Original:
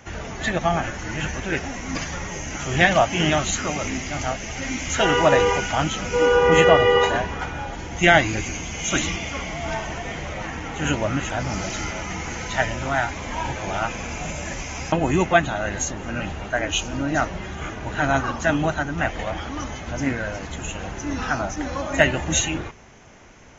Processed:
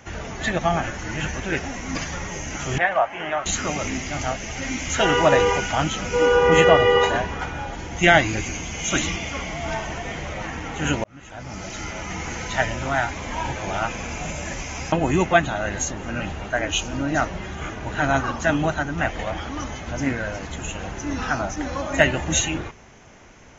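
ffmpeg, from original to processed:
-filter_complex "[0:a]asettb=1/sr,asplit=3[a][b][c];[a]atrim=end=2.784[d];[b]atrim=start=2.78:end=3.46,asetpts=PTS-STARTPTS,afade=t=in:d=0.004:c=qsin,afade=t=out:st=0.676:d=0.004:c=qsin,acrossover=split=510 2100:gain=0.1 1 0.0631[e][f][g];[e][f][g]amix=inputs=3:normalize=0[h];[c]atrim=start=3.456[i];[d][h]acrossfade=d=0.004:c1=hsin:c2=qsin[j];[j][i]acrossfade=d=0.004:c1=qsin:c2=hsin,asplit=2[k][l];[k]atrim=end=11.04,asetpts=PTS-STARTPTS,afade=t=out:st=11.036:d=0.004:c=hsin[m];[l]atrim=start=11.04,asetpts=PTS-STARTPTS,afade=t=in:d=1.19[n];[m][n]concat=n=2:v=0:a=1"

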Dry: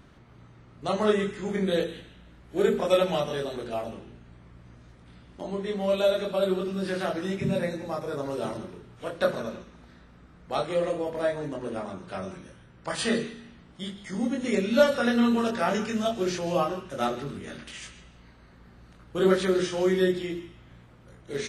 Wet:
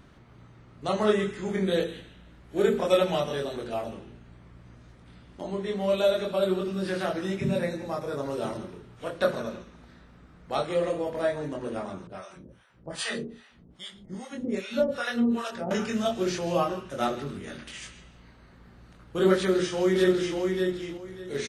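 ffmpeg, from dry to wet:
-filter_complex "[0:a]asettb=1/sr,asplit=3[a][b][c];[a]atrim=end=12.074[d];[b]atrim=start=12.07:end=15.71,asetpts=PTS-STARTPTS,afade=t=in:d=0.004:c=qsin,afade=t=out:st=3.636:d=0.004:c=qsin,acrossover=split=630[e][f];[e]aeval=exprs='val(0)*(1-1/2+1/2*cos(2*PI*2.5*n/s))':c=same[g];[f]aeval=exprs='val(0)*(1-1/2-1/2*cos(2*PI*2.5*n/s))':c=same[h];[g][h]amix=inputs=2:normalize=0[i];[c]atrim=start=15.706[j];[d][i]acrossfade=d=0.004:c1=hsin:c2=qsin[k];[k][j]acrossfade=d=0.004:c1=qsin:c2=hsin,asplit=2[l][m];[m]afade=t=in:st=19.36:d=0.01,afade=t=out:st=20.38:d=0.01,aecho=0:1:590|1180|1770:0.630957|0.126191|0.0252383[n];[l][n]amix=inputs=2:normalize=0"

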